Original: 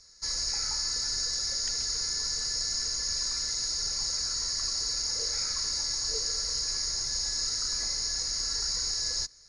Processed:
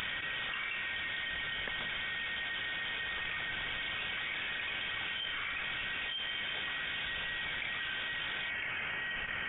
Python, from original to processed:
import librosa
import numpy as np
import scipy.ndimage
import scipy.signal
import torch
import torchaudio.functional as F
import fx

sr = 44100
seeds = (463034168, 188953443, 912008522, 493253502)

y = fx.highpass(x, sr, hz=fx.steps((0.0, 180.0), (8.5, 610.0)), slope=12)
y = fx.freq_invert(y, sr, carrier_hz=3600)
y = fx.env_flatten(y, sr, amount_pct=100)